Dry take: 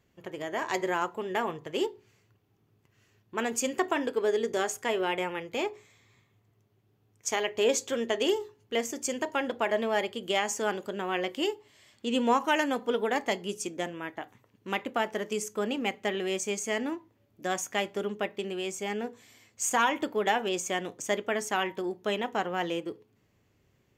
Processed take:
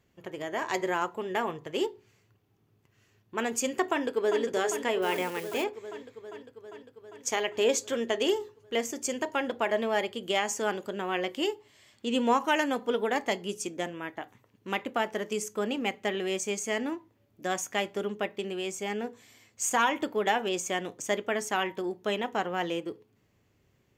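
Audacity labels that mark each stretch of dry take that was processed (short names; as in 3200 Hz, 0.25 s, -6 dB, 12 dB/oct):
3.850000	4.420000	echo throw 0.4 s, feedback 75%, level -7.5 dB
5.020000	5.640000	switching spikes of -33.5 dBFS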